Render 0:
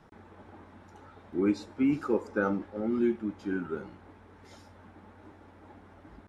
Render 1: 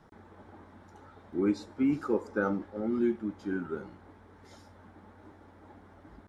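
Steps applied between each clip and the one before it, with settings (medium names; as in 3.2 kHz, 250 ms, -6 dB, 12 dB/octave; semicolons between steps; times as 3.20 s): peaking EQ 2.6 kHz -5.5 dB 0.38 oct; trim -1 dB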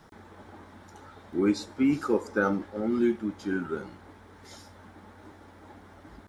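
treble shelf 2.3 kHz +9 dB; trim +3 dB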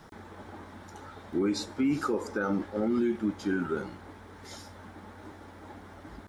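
peak limiter -23 dBFS, peak gain reduction 10 dB; trim +3 dB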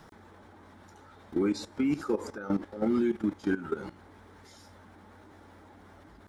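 level held to a coarse grid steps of 14 dB; trim +2.5 dB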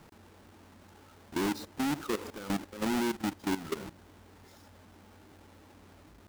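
square wave that keeps the level; trim -7 dB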